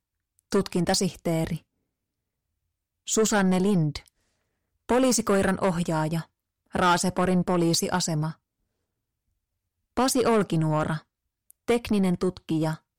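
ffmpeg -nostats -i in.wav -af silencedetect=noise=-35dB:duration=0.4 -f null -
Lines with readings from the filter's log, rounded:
silence_start: 0.00
silence_end: 0.52 | silence_duration: 0.52
silence_start: 1.57
silence_end: 3.08 | silence_duration: 1.51
silence_start: 3.99
silence_end: 4.89 | silence_duration: 0.90
silence_start: 6.22
silence_end: 6.75 | silence_duration: 0.53
silence_start: 8.32
silence_end: 9.97 | silence_duration: 1.66
silence_start: 10.98
silence_end: 11.50 | silence_duration: 0.52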